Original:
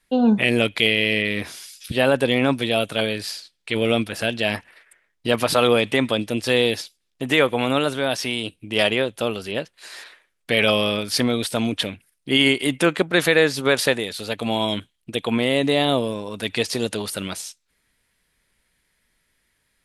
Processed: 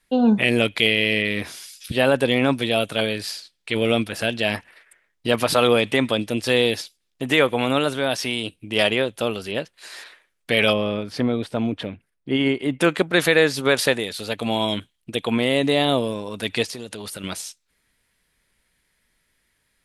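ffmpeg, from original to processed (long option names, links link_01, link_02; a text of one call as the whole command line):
ffmpeg -i in.wav -filter_complex "[0:a]asplit=3[link_01][link_02][link_03];[link_01]afade=type=out:start_time=10.72:duration=0.02[link_04];[link_02]lowpass=frequency=1000:poles=1,afade=type=in:start_time=10.72:duration=0.02,afade=type=out:start_time=12.8:duration=0.02[link_05];[link_03]afade=type=in:start_time=12.8:duration=0.02[link_06];[link_04][link_05][link_06]amix=inputs=3:normalize=0,asettb=1/sr,asplit=3[link_07][link_08][link_09];[link_07]atrim=end=16.644[link_10];[link_08]atrim=start=16.64:end=17.24,asetpts=PTS-STARTPTS,afade=type=in:duration=0.004:curve=qsin,afade=type=out:start_time=0.596:duration=0.004:curve=qsin,acompressor=threshold=-29dB:ratio=12:attack=3.2:release=140:knee=1:detection=peak[link_11];[link_09]atrim=start=17.236[link_12];[link_10][link_11]acrossfade=duration=0.004:curve1=hsin:curve2=qsin[link_13];[link_13][link_12]acrossfade=duration=0.004:curve1=qsin:curve2=hsin" out.wav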